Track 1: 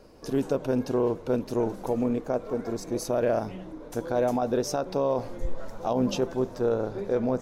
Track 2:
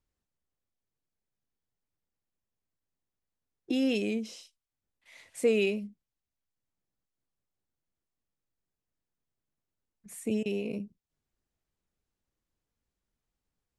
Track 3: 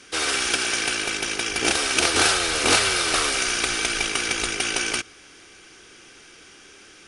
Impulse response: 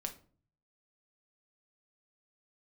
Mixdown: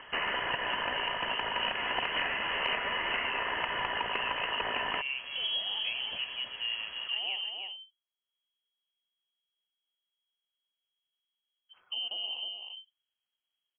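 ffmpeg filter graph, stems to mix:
-filter_complex "[0:a]equalizer=frequency=140:width=0.9:gain=-14.5,volume=-7dB,asplit=2[link_01][link_02];[link_02]volume=-9dB[link_03];[1:a]alimiter=level_in=0.5dB:limit=-24dB:level=0:latency=1,volume=-0.5dB,adelay=1650,volume=-4dB,asplit=2[link_04][link_05];[link_05]volume=-5.5dB[link_06];[2:a]highpass=190,acompressor=mode=upward:threshold=-43dB:ratio=2.5,volume=-0.5dB[link_07];[link_03][link_06]amix=inputs=2:normalize=0,aecho=0:1:315:1[link_08];[link_01][link_04][link_07][link_08]amix=inputs=4:normalize=0,lowpass=frequency=2800:width_type=q:width=0.5098,lowpass=frequency=2800:width_type=q:width=0.6013,lowpass=frequency=2800:width_type=q:width=0.9,lowpass=frequency=2800:width_type=q:width=2.563,afreqshift=-3300,acompressor=threshold=-29dB:ratio=6"

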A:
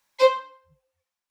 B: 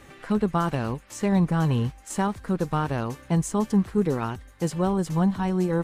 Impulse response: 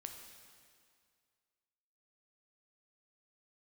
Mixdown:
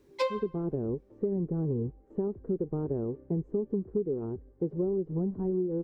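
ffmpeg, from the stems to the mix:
-filter_complex "[0:a]highshelf=frequency=4800:gain=-6.5,volume=-1dB[link_01];[1:a]dynaudnorm=framelen=110:gausssize=5:maxgain=11.5dB,lowpass=frequency=400:width_type=q:width=4.9,volume=-16.5dB[link_02];[link_01][link_02]amix=inputs=2:normalize=0,acompressor=threshold=-26dB:ratio=10"

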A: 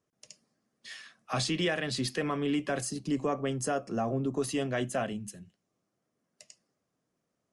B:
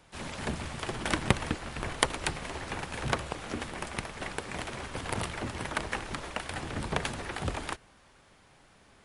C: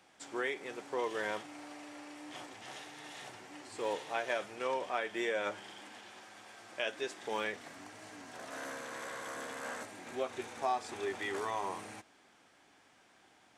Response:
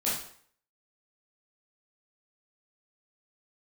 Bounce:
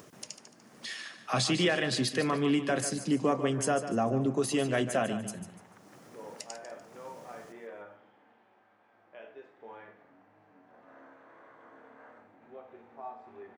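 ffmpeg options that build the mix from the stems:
-filter_complex "[0:a]highpass=100,acompressor=mode=upward:threshold=-37dB:ratio=2.5,volume=2.5dB,asplit=2[link_01][link_02];[link_02]volume=-11dB[link_03];[1:a]highpass=frequency=250:width=0.5412,highpass=frequency=250:width=1.3066,acompressor=threshold=-43dB:ratio=6,lowpass=1900,volume=-13.5dB[link_04];[2:a]lowpass=1400,adelay=2350,volume=-15dB,asplit=2[link_05][link_06];[link_06]volume=-5.5dB[link_07];[3:a]atrim=start_sample=2205[link_08];[link_07][link_08]afir=irnorm=-1:irlink=0[link_09];[link_03]aecho=0:1:147|294|441|588|735:1|0.32|0.102|0.0328|0.0105[link_10];[link_01][link_04][link_05][link_09][link_10]amix=inputs=5:normalize=0"

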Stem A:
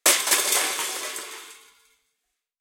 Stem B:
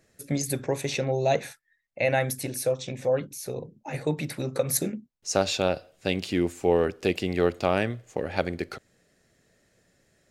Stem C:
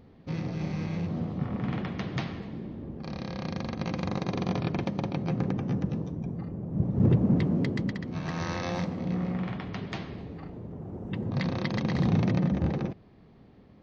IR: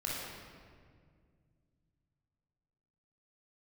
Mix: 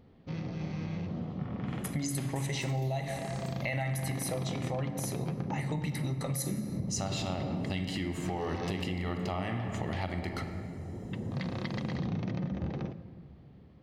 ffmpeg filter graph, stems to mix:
-filter_complex "[0:a]acompressor=mode=upward:threshold=-27dB:ratio=2.5,asplit=2[link_01][link_02];[link_02]afreqshift=-1.3[link_03];[link_01][link_03]amix=inputs=2:normalize=1,adelay=2300,volume=-17.5dB,afade=type=in:start_time=2.99:duration=0.44:silence=0.473151[link_04];[1:a]aecho=1:1:1:0.69,adynamicequalizer=threshold=0.00562:dfrequency=3600:dqfactor=0.7:tfrequency=3600:tqfactor=0.7:attack=5:release=100:ratio=0.375:range=2:mode=cutabove:tftype=highshelf,adelay=1650,volume=-0.5dB,asplit=2[link_05][link_06];[link_06]volume=-10.5dB[link_07];[2:a]volume=-5dB,asplit=2[link_08][link_09];[link_09]volume=-18dB[link_10];[link_05][link_08]amix=inputs=2:normalize=0,equalizer=frequency=3100:width=5.2:gain=3,alimiter=limit=-20.5dB:level=0:latency=1,volume=0dB[link_11];[3:a]atrim=start_sample=2205[link_12];[link_07][link_10]amix=inputs=2:normalize=0[link_13];[link_13][link_12]afir=irnorm=-1:irlink=0[link_14];[link_04][link_11][link_14]amix=inputs=3:normalize=0,acompressor=threshold=-30dB:ratio=6"

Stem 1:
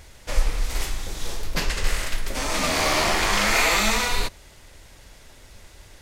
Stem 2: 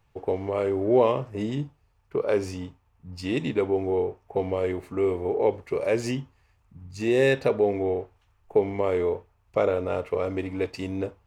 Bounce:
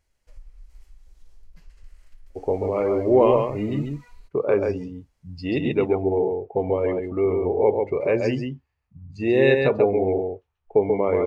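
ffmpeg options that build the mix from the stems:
ffmpeg -i stem1.wav -i stem2.wav -filter_complex "[0:a]bandreject=frequency=3600:width=9.4,acompressor=threshold=-37dB:ratio=2,volume=-11dB[link_01];[1:a]lowpass=6300,adelay=2200,volume=2.5dB,asplit=2[link_02][link_03];[link_03]volume=-4dB,aecho=0:1:136:1[link_04];[link_01][link_02][link_04]amix=inputs=3:normalize=0,afftdn=noise_reduction=17:noise_floor=-35" out.wav

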